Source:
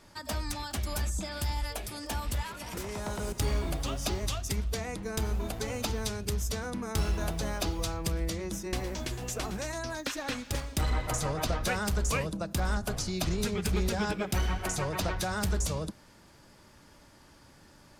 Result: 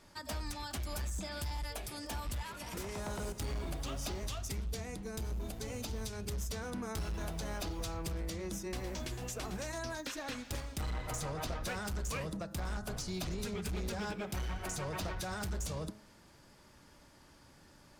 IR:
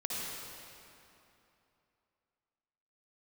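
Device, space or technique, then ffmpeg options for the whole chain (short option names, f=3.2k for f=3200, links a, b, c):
limiter into clipper: -filter_complex "[0:a]asettb=1/sr,asplit=3[a][b][c];[a]atrim=end=4.714[d];[b]atrim=start=4.71:end=6.13,asetpts=PTS-STARTPTS,afade=t=in:d=0.004:c=qsin,afade=t=out:st=1.416:d=0.004:c=qsin,equalizer=f=1.2k:w=0.47:g=-6[e];[c]atrim=start=6.126[f];[d][e]acrossfade=d=0.004:c1=hsin:c2=qsin[g];[g][f]acrossfade=d=0.004:c1=qsin:c2=hsin,bandreject=f=105.9:t=h:w=4,bandreject=f=211.8:t=h:w=4,bandreject=f=317.7:t=h:w=4,bandreject=f=423.6:t=h:w=4,bandreject=f=529.5:t=h:w=4,bandreject=f=635.4:t=h:w=4,bandreject=f=741.3:t=h:w=4,bandreject=f=847.2:t=h:w=4,bandreject=f=953.1:t=h:w=4,bandreject=f=1.059k:t=h:w=4,bandreject=f=1.1649k:t=h:w=4,bandreject=f=1.2708k:t=h:w=4,bandreject=f=1.3767k:t=h:w=4,bandreject=f=1.4826k:t=h:w=4,bandreject=f=1.5885k:t=h:w=4,bandreject=f=1.6944k:t=h:w=4,bandreject=f=1.8003k:t=h:w=4,bandreject=f=1.9062k:t=h:w=4,bandreject=f=2.0121k:t=h:w=4,alimiter=level_in=1dB:limit=-24dB:level=0:latency=1:release=165,volume=-1dB,asoftclip=type=hard:threshold=-30dB,volume=-3.5dB"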